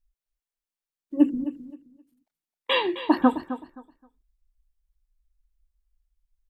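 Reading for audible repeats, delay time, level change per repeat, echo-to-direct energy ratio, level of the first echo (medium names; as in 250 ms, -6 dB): 2, 262 ms, -13.0 dB, -13.0 dB, -13.0 dB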